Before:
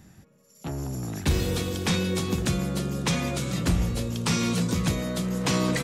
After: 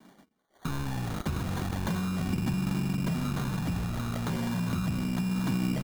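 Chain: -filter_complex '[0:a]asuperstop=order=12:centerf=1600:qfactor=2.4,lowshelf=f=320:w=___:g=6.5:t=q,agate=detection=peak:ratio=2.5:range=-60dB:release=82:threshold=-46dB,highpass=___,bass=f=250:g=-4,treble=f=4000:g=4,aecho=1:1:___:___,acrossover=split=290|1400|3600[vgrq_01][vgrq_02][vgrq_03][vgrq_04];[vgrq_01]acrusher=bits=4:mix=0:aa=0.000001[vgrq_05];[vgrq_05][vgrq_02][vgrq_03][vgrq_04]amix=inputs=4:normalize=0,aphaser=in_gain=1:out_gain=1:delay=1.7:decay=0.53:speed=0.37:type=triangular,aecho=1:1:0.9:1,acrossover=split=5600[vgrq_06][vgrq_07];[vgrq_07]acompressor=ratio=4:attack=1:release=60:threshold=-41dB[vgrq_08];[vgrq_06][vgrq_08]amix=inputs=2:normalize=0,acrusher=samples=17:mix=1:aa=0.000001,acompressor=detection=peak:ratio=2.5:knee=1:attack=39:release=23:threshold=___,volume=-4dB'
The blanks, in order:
1.5, 110, 986, 0.15, -35dB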